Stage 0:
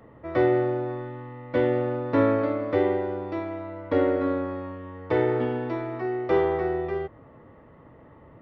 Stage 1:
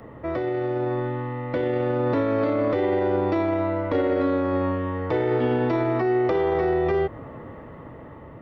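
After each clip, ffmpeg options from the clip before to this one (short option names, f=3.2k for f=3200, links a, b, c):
-filter_complex "[0:a]acrossover=split=1300|2700[a][b][c];[a]acompressor=threshold=-29dB:ratio=4[d];[b]acompressor=threshold=-51dB:ratio=4[e];[c]acompressor=threshold=-54dB:ratio=4[f];[d][e][f]amix=inputs=3:normalize=0,alimiter=level_in=3dB:limit=-24dB:level=0:latency=1:release=15,volume=-3dB,dynaudnorm=f=580:g=5:m=4dB,volume=8dB"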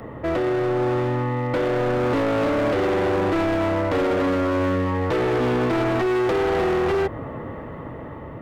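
-af "asoftclip=type=hard:threshold=-25.5dB,volume=6.5dB"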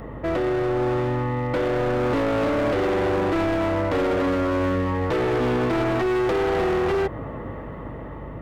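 -af "aeval=exprs='val(0)+0.0126*(sin(2*PI*50*n/s)+sin(2*PI*2*50*n/s)/2+sin(2*PI*3*50*n/s)/3+sin(2*PI*4*50*n/s)/4+sin(2*PI*5*50*n/s)/5)':c=same,volume=-1dB"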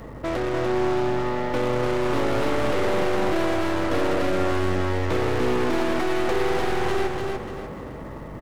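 -af "aeval=exprs='val(0)+0.5*0.00596*sgn(val(0))':c=same,aeval=exprs='0.126*(cos(1*acos(clip(val(0)/0.126,-1,1)))-cos(1*PI/2))+0.0562*(cos(2*acos(clip(val(0)/0.126,-1,1)))-cos(2*PI/2))+0.01*(cos(8*acos(clip(val(0)/0.126,-1,1)))-cos(8*PI/2))':c=same,aecho=1:1:295|590|885|1180|1475:0.631|0.233|0.0864|0.032|0.0118,volume=-4dB"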